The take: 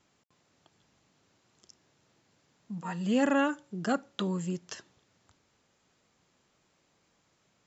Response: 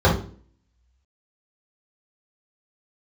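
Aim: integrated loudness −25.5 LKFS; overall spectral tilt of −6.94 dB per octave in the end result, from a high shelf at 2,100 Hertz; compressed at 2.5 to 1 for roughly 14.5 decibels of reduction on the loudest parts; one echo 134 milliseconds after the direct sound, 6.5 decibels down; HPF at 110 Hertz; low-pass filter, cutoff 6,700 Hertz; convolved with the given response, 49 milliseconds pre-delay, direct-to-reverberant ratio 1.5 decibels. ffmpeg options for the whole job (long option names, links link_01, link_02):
-filter_complex "[0:a]highpass=110,lowpass=6700,highshelf=frequency=2100:gain=-6.5,acompressor=threshold=-45dB:ratio=2.5,aecho=1:1:134:0.473,asplit=2[link_01][link_02];[1:a]atrim=start_sample=2205,adelay=49[link_03];[link_02][link_03]afir=irnorm=-1:irlink=0,volume=-23dB[link_04];[link_01][link_04]amix=inputs=2:normalize=0,volume=12dB"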